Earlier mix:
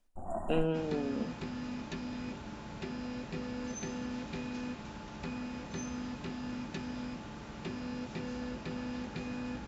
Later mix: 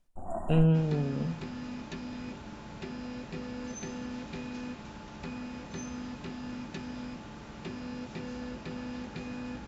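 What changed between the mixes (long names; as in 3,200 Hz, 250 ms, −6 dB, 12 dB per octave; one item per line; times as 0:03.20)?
speech: remove linear-phase brick-wall high-pass 180 Hz
first sound: send +6.5 dB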